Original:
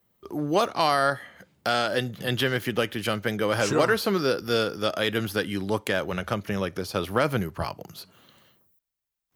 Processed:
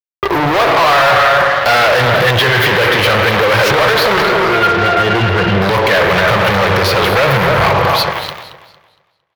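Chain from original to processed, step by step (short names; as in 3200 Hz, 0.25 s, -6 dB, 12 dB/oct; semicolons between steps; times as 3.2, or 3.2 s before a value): 4.22–5.62 octave resonator F, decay 0.12 s; speakerphone echo 0.27 s, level -11 dB; on a send at -10.5 dB: reverb RT60 1.6 s, pre-delay 42 ms; on the sum: fuzz box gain 42 dB, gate -50 dBFS; graphic EQ 125/250/500/1000/2000/4000/8000 Hz +7/-8/+7/+7/+8/+6/-9 dB; limiter -7.5 dBFS, peak gain reduction 9 dB; warbling echo 0.229 s, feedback 32%, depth 139 cents, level -13 dB; gain +3.5 dB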